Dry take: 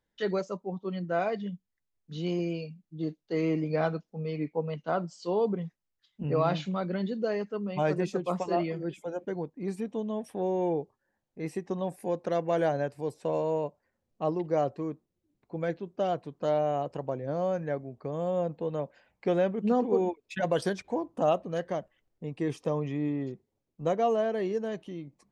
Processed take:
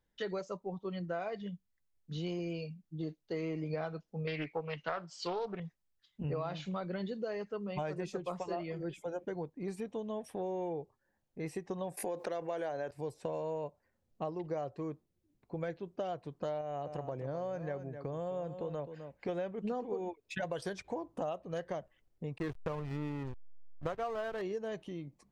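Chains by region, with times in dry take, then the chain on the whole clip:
4.27–5.60 s: peaking EQ 2.2 kHz +13.5 dB 2.7 oct + loudspeaker Doppler distortion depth 0.24 ms
11.97–12.91 s: high-pass 260 Hz + level flattener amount 50%
16.61–19.29 s: compression 1.5:1, threshold -34 dBFS + delay 258 ms -11.5 dB
22.38–24.42 s: peaking EQ 1.4 kHz +13.5 dB 0.89 oct + hysteresis with a dead band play -29 dBFS
whole clip: dynamic bell 230 Hz, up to -7 dB, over -44 dBFS, Q 1.3; compression 6:1, threshold -33 dBFS; bass shelf 110 Hz +7 dB; trim -1.5 dB

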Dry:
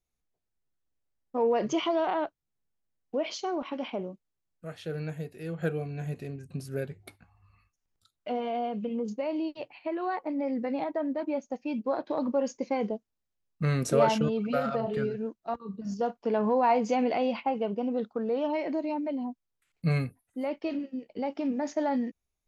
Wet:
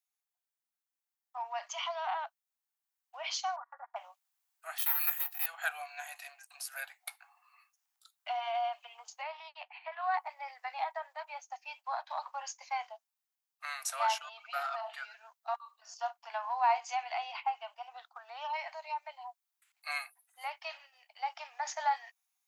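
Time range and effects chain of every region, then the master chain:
3.56–3.96 s: rippled Chebyshev low-pass 1.9 kHz, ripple 6 dB + gate -39 dBFS, range -29 dB + comb 4.2 ms, depth 68%
4.78–5.46 s: comb filter that takes the minimum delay 1.6 ms + high-pass 1.1 kHz + careless resampling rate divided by 3×, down filtered, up zero stuff
9.23–10.14 s: band-pass 290–5000 Hz + distance through air 170 m + loudspeaker Doppler distortion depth 0.1 ms
whole clip: gain riding 2 s; steep high-pass 720 Hz 72 dB/octave; treble shelf 9.4 kHz +9.5 dB

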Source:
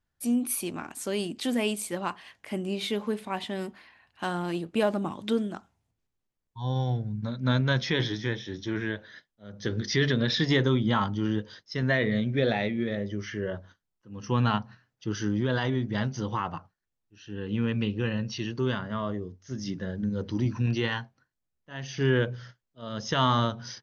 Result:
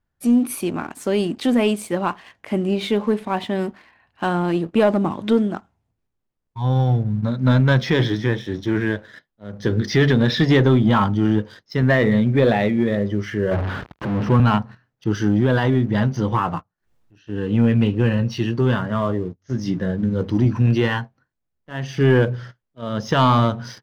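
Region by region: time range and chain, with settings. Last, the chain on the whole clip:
13.51–14.40 s: jump at every zero crossing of -28 dBFS + high-pass 56 Hz 24 dB/octave + distance through air 270 m
16.32–20.25 s: gate -44 dBFS, range -24 dB + upward compressor, threshold -38 dBFS + doubling 17 ms -10 dB
whole clip: treble shelf 2.8 kHz -11.5 dB; waveshaping leveller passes 1; trim +7 dB

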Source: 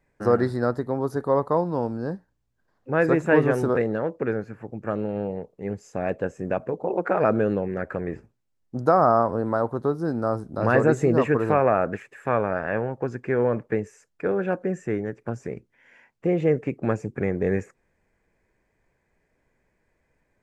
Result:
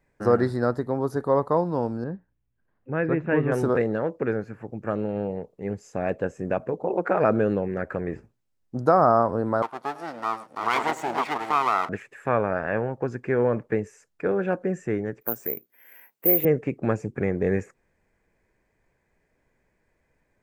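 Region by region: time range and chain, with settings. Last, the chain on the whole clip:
2.04–3.52 s: low-pass 2.8 kHz 24 dB/octave + peaking EQ 840 Hz -7 dB 2.7 oct
9.62–11.89 s: comb filter that takes the minimum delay 0.88 ms + high-pass 560 Hz + delay 104 ms -16.5 dB
15.21–16.45 s: high-pass 280 Hz + careless resampling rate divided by 3×, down none, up zero stuff
whole clip: none

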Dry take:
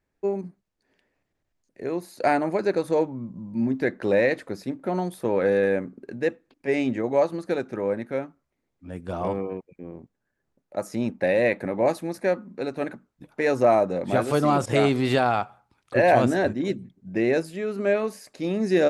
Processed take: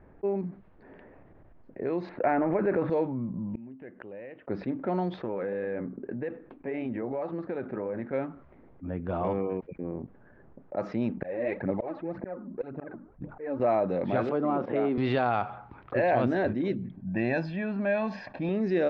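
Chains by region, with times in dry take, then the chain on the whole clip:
2.09–2.90 s: low-pass 2.3 kHz 24 dB/octave + transient shaper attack +4 dB, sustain +10 dB
3.49–4.48 s: resonant low-pass 2.9 kHz, resonance Q 8.8 + inverted gate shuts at -25 dBFS, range -34 dB
5.16–8.13 s: flange 1.8 Hz, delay 1.5 ms, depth 4.7 ms, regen -76% + compression 4:1, threshold -31 dBFS
11.17–13.60 s: treble shelf 2.3 kHz -11 dB + slow attack 582 ms + phaser 1.9 Hz, delay 3.8 ms, feedback 61%
14.29–14.98 s: high-pass 190 Hz 24 dB/octave + tape spacing loss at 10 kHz 44 dB
16.95–18.49 s: peaking EQ 7.4 kHz -3.5 dB 0.33 oct + comb 1.2 ms, depth 75%
whole clip: level-controlled noise filter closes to 1.2 kHz, open at -19 dBFS; Bessel low-pass 2.8 kHz, order 6; level flattener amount 50%; trim -7.5 dB

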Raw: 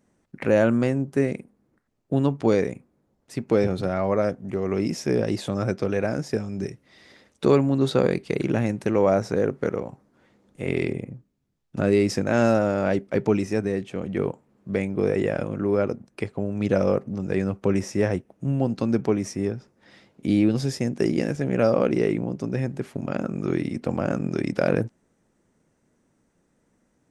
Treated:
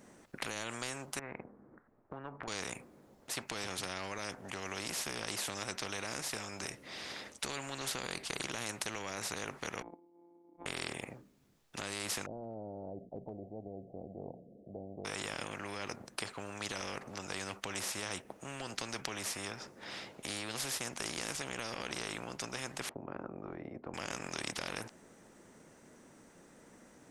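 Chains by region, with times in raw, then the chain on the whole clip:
1.19–2.48 s: low-pass 1.6 kHz 24 dB/octave + compression 2.5:1, threshold -32 dBFS
9.82–10.66 s: sorted samples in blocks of 256 samples + cascade formant filter u + resonant low shelf 210 Hz -13 dB, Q 1.5
12.26–15.05 s: rippled Chebyshev low-pass 710 Hz, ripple 3 dB + hum notches 60/120/180/240 Hz
22.89–23.94 s: band-pass filter 360 Hz, Q 2.4 + tilt EQ -4.5 dB/octave
whole clip: bass shelf 200 Hz -11 dB; peak limiter -17.5 dBFS; spectrum-flattening compressor 4:1; trim +2.5 dB

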